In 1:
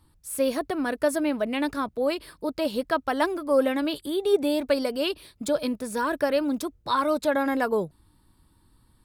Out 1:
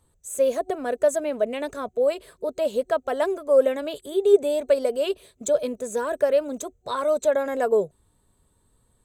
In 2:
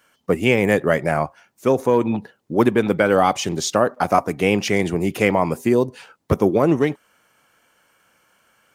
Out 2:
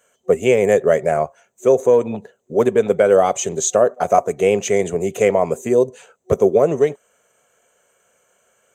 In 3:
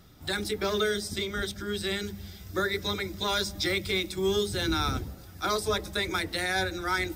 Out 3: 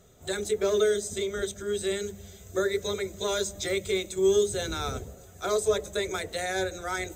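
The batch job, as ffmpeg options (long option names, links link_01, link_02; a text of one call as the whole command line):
ffmpeg -i in.wav -af "superequalizer=6b=0.631:7b=3.16:8b=2.82:14b=0.562:15b=3.98,volume=-4.5dB" out.wav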